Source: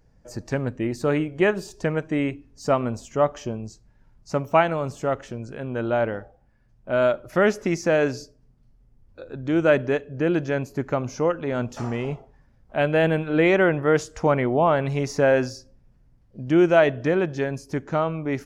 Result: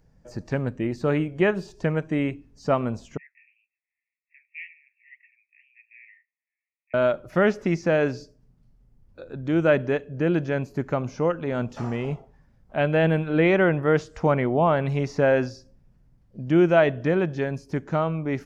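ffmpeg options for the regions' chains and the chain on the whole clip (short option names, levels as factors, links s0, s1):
-filter_complex "[0:a]asettb=1/sr,asplit=3[s0][s1][s2];[s0]atrim=end=3.174[s3];[s1]atrim=start=3.17:end=6.94,asetpts=PTS-STARTPTS,afade=t=in:d=0.004:c=qsin,afade=t=out:st=3.766:d=0.004:c=qsin,asuperpass=centerf=2200:order=20:qfactor=2.6,flanger=delay=3.6:depth=9.5:regen=38:speed=1.9:shape=sinusoidal[s4];[s2]atrim=start=6.936[s5];[s3][s4]acrossfade=d=0.004:c1=hsin:c2=qsin[s6];[s6][s5]acrossfade=d=0.004:c1=qsin:c2=hsin,acrossover=split=5000[s7][s8];[s8]acompressor=threshold=0.00112:ratio=4:attack=1:release=60[s9];[s7][s9]amix=inputs=2:normalize=0,equalizer=f=170:t=o:w=0.58:g=4.5,volume=0.841"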